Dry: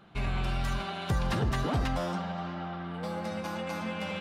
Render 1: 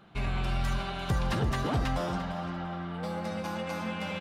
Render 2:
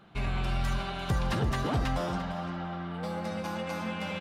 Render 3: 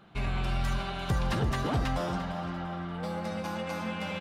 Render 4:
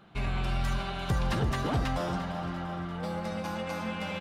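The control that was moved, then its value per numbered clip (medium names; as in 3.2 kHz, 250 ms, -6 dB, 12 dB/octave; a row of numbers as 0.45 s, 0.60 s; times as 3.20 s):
feedback delay, feedback: 27%, 16%, 41%, 62%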